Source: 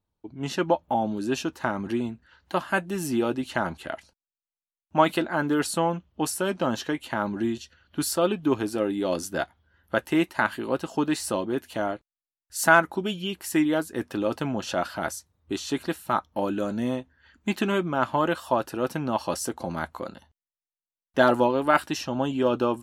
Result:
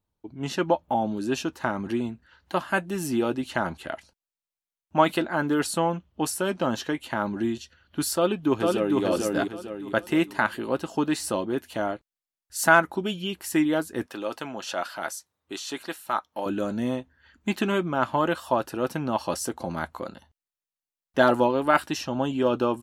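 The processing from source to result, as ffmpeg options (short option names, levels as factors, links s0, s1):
-filter_complex "[0:a]asplit=2[s0][s1];[s1]afade=t=in:st=8.15:d=0.01,afade=t=out:st=9.02:d=0.01,aecho=0:1:450|900|1350|1800|2250:0.794328|0.317731|0.127093|0.050837|0.0203348[s2];[s0][s2]amix=inputs=2:normalize=0,asettb=1/sr,asplit=3[s3][s4][s5];[s3]atrim=end=14.064[s6];[s4]atrim=start=14.06:end=16.46,asetpts=PTS-STARTPTS,afade=t=in:d=0.004:c=qsin,afade=t=out:st=2.396:d=0.004:c=qsin,highpass=f=690:p=1[s7];[s5]atrim=start=16.456[s8];[s6][s7]acrossfade=d=0.004:c1=hsin:c2=qsin[s9];[s9][s8]acrossfade=d=0.004:c1=qsin:c2=hsin"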